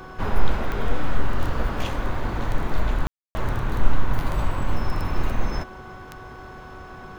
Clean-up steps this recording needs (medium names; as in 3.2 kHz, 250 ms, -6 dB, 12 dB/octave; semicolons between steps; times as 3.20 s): de-click; de-hum 372.6 Hz, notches 4; room tone fill 3.07–3.35 s